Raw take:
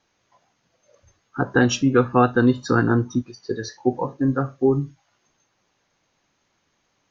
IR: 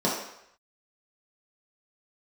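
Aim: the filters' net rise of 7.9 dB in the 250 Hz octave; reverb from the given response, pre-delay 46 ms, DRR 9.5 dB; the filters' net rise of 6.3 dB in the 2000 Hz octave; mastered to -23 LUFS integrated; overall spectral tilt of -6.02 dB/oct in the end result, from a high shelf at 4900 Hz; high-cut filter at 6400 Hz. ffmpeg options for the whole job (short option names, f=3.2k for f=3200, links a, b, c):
-filter_complex "[0:a]lowpass=6.4k,equalizer=f=250:t=o:g=8.5,equalizer=f=2k:t=o:g=8.5,highshelf=f=4.9k:g=4.5,asplit=2[a][b];[1:a]atrim=start_sample=2205,adelay=46[c];[b][c]afir=irnorm=-1:irlink=0,volume=-23dB[d];[a][d]amix=inputs=2:normalize=0,volume=-8.5dB"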